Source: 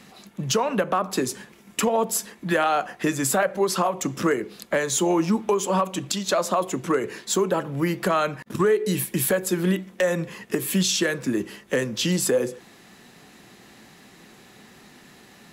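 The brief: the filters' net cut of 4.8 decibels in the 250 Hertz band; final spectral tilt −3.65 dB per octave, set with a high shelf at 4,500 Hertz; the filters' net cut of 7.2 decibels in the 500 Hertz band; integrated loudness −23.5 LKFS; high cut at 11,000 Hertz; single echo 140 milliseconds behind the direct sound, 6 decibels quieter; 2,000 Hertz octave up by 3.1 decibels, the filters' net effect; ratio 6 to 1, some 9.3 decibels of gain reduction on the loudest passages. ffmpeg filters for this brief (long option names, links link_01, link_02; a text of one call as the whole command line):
ffmpeg -i in.wav -af "lowpass=11000,equalizer=frequency=250:width_type=o:gain=-4.5,equalizer=frequency=500:width_type=o:gain=-8,equalizer=frequency=2000:width_type=o:gain=3.5,highshelf=frequency=4500:gain=5.5,acompressor=threshold=-28dB:ratio=6,aecho=1:1:140:0.501,volume=7dB" out.wav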